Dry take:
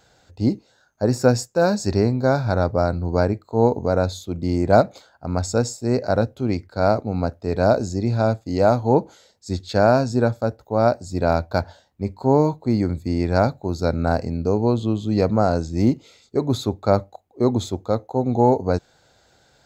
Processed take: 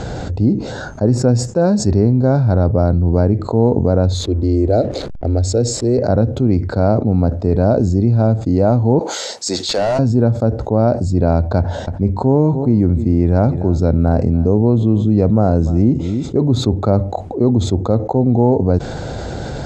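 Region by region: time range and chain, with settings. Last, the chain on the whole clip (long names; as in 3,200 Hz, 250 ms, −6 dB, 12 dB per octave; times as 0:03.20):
0:04.14–0:05.98: parametric band 4,100 Hz +6.5 dB 0.21 octaves + phaser with its sweep stopped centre 430 Hz, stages 4 + slack as between gear wheels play −45 dBFS
0:08.99–0:09.99: high-pass filter 670 Hz + high-shelf EQ 3,000 Hz +10 dB + hard clipping −22.5 dBFS
0:11.58–0:16.39: notch filter 4,500 Hz, Q 7.8 + single-tap delay 292 ms −22.5 dB
whole clip: low-pass filter 8,800 Hz 24 dB per octave; tilt shelving filter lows +9 dB, about 750 Hz; envelope flattener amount 70%; level −4 dB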